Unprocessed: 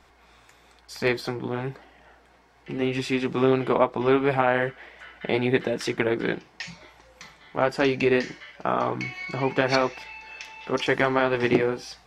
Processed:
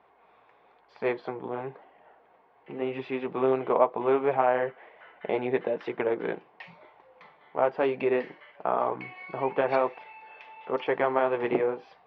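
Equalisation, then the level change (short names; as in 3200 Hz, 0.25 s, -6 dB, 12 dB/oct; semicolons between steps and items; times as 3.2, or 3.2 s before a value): HPF 150 Hz 12 dB/oct; LPF 3000 Hz 24 dB/oct; band shelf 680 Hz +8 dB; -8.5 dB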